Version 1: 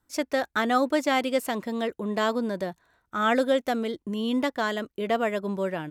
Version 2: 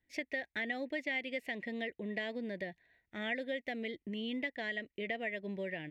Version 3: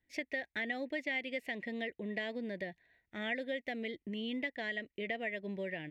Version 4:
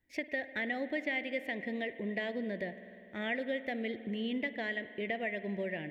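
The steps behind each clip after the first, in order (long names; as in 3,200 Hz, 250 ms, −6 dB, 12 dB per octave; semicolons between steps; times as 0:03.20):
drawn EQ curve 680 Hz 0 dB, 1,300 Hz −21 dB, 1,900 Hz +15 dB, 8,100 Hz −14 dB; downward compressor 3 to 1, threshold −28 dBFS, peak gain reduction 10.5 dB; level −8.5 dB
no processing that can be heard
parametric band 6,000 Hz −5.5 dB 2.2 octaves; on a send at −12 dB: convolution reverb RT60 2.9 s, pre-delay 49 ms; on the sum: level +3 dB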